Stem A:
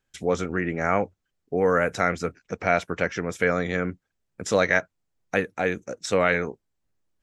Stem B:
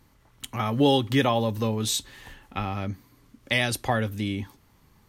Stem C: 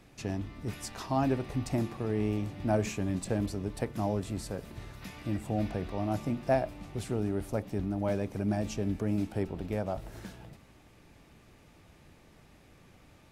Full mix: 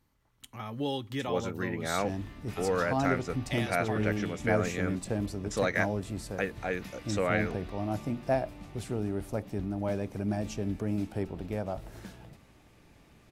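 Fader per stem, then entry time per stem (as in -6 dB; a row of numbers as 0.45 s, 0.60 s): -8.0 dB, -12.5 dB, -1.0 dB; 1.05 s, 0.00 s, 1.80 s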